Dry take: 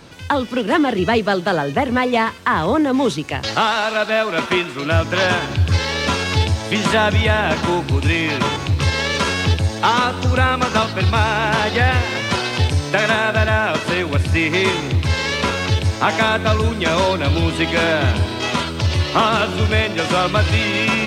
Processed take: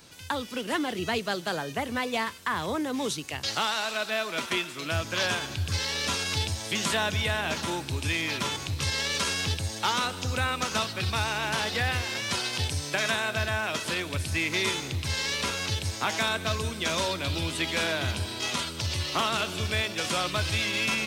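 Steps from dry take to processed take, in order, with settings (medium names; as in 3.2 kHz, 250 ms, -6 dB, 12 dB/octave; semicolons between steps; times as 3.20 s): pre-emphasis filter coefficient 0.8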